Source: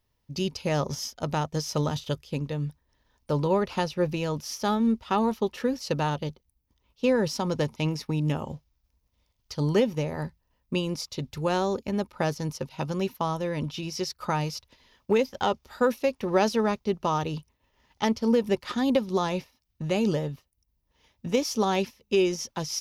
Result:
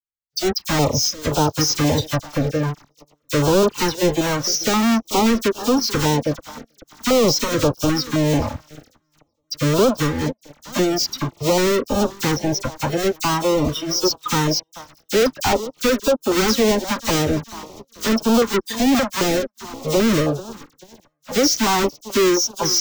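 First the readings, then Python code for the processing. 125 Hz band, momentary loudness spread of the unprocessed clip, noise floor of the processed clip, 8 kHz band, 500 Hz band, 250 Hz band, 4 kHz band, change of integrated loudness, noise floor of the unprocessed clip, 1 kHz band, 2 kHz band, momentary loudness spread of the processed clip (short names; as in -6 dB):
+6.5 dB, 9 LU, -70 dBFS, +16.0 dB, +7.5 dB, +8.0 dB, +13.0 dB, +8.5 dB, -75 dBFS, +7.0 dB, +10.0 dB, 9 LU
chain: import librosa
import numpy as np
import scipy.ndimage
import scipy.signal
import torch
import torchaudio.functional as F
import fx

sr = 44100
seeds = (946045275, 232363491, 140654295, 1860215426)

y = fx.halfwave_hold(x, sr)
y = fx.noise_reduce_blind(y, sr, reduce_db=26)
y = fx.graphic_eq_15(y, sr, hz=(160, 2500, 6300), db=(-11, -9, 6))
y = fx.echo_feedback(y, sr, ms=435, feedback_pct=59, wet_db=-22.0)
y = fx.leveller(y, sr, passes=5)
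y = fx.peak_eq(y, sr, hz=10000.0, db=-10.0, octaves=0.73)
y = fx.notch(y, sr, hz=1700.0, q=22.0)
y = fx.dispersion(y, sr, late='lows', ms=41.0, hz=2600.0)
y = fx.filter_held_notch(y, sr, hz=3.8, low_hz=400.0, high_hz=2000.0)
y = y * 10.0 ** (-4.0 / 20.0)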